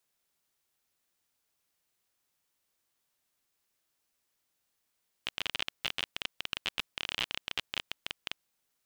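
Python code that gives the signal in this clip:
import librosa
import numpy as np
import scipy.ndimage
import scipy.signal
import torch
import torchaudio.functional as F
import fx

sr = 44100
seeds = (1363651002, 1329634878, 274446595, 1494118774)

y = fx.geiger_clicks(sr, seeds[0], length_s=3.15, per_s=24.0, level_db=-15.0)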